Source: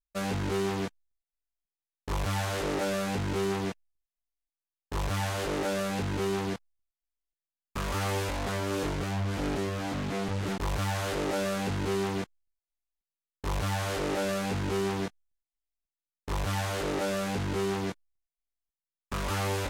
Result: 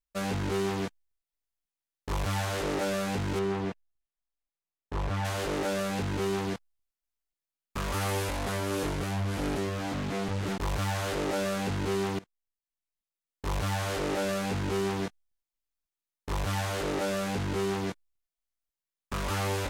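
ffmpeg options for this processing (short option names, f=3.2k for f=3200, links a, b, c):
-filter_complex "[0:a]asettb=1/sr,asplit=3[a][b][c];[a]atrim=end=3.394[d];[b]atrim=start=3.39:end=5.25,asetpts=PTS-STARTPTS,afade=t=in:d=0.004:c=qsin,afade=t=out:st=1.856:d=0.004:c=qsin,aemphasis=mode=reproduction:type=75kf[e];[c]atrim=start=5.246[f];[d][e]acrossfade=d=0.004:c1=hsin:c2=qsin[g];[g][f]acrossfade=d=0.004:c1=qsin:c2=hsin,asettb=1/sr,asplit=3[h][i][j];[h]atrim=end=7.934[k];[i]atrim=start=7.93:end=9.59,asetpts=PTS-STARTPTS,afade=t=in:d=0.004:c=qsin,afade=t=out:st=1.656:d=0.004:c=qsin,equalizer=f=11k:w=1.5:g=5.5[l];[j]atrim=start=9.586[m];[k][l]acrossfade=d=0.004:c1=hsin:c2=qsin[n];[n][m]acrossfade=d=0.004:c1=qsin:c2=hsin,asplit=2[o][p];[o]atrim=end=12.19,asetpts=PTS-STARTPTS,afade=t=out:st=12.186:d=0.004:c=hsin:silence=0.0891251[q];[p]atrim=start=12.19,asetpts=PTS-STARTPTS,afade=t=in:d=1.31:silence=0.0891251[r];[q][r]concat=n=2:v=0:a=1"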